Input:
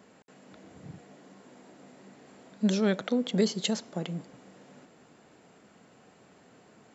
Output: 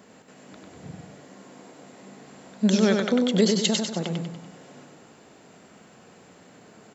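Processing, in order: treble shelf 5.7 kHz +4.5 dB; on a send: feedback delay 97 ms, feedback 44%, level -4 dB; on the sum: trim +4.5 dB

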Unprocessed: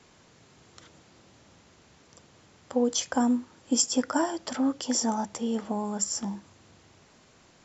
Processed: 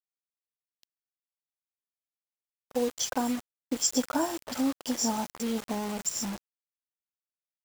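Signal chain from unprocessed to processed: 2.75–3.94 s: peaking EQ 220 Hz -6 dB 0.47 oct; bands offset in time lows, highs 50 ms, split 2.1 kHz; bit crusher 6-bit; gate -41 dBFS, range -10 dB; trim -2 dB

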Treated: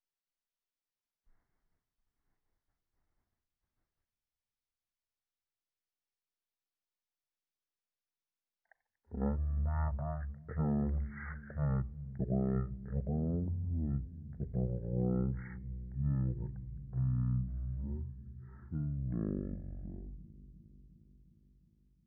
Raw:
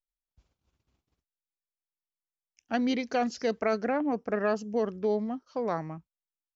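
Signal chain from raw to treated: feedback echo behind a low-pass 106 ms, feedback 65%, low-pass 680 Hz, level -13 dB; wide varispeed 0.297×; trim -6.5 dB

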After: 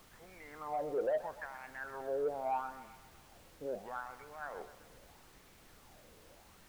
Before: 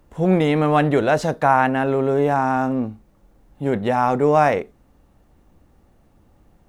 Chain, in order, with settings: low-pass that closes with the level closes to 1.2 kHz, closed at -14 dBFS; reverse; compression, threshold -28 dBFS, peak gain reduction 15.5 dB; reverse; peak limiter -24.5 dBFS, peak gain reduction 5.5 dB; wah-wah 0.77 Hz 470–2300 Hz, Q 7.4; added noise pink -68 dBFS; saturation -34 dBFS, distortion -17 dB; on a send: feedback echo behind a band-pass 127 ms, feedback 52%, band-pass 1.5 kHz, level -11.5 dB; on the sum: trim +7.5 dB

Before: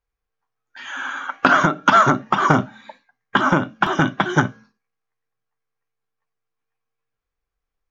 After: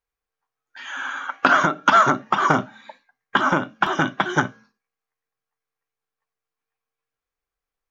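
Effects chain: bass shelf 210 Hz -9 dB; trim -1 dB

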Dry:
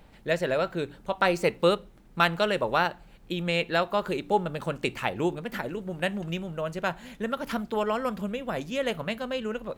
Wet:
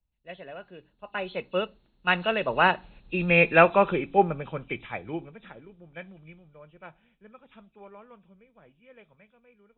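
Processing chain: knee-point frequency compression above 2.4 kHz 4:1; Doppler pass-by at 3.38 s, 21 m/s, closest 14 m; three bands expanded up and down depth 70%; trim +3 dB

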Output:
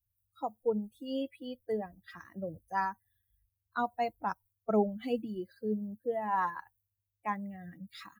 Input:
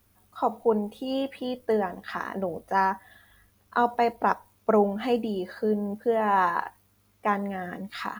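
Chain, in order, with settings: expander on every frequency bin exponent 2; peaking EQ 130 Hz +7.5 dB 1.2 oct; trim -5.5 dB

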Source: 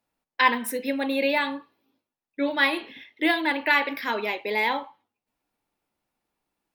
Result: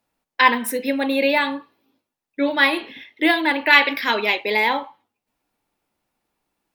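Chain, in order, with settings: 3.72–4.57 s: dynamic bell 3.5 kHz, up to +8 dB, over -38 dBFS, Q 0.75; trim +5 dB

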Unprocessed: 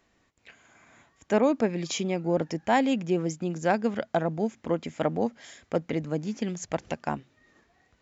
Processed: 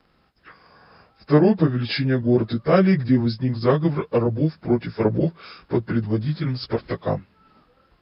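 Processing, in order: frequency-domain pitch shifter -6 st; trim +8.5 dB

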